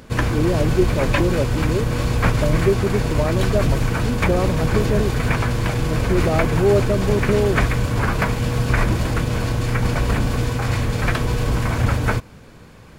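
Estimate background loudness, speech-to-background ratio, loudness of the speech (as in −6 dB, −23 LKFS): −21.0 LKFS, −2.0 dB, −23.0 LKFS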